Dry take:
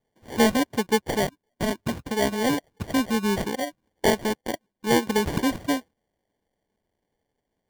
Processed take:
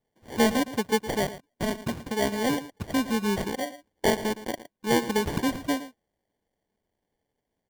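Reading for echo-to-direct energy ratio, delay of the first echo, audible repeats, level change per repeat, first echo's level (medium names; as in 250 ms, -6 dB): -14.5 dB, 113 ms, 1, no regular repeats, -14.5 dB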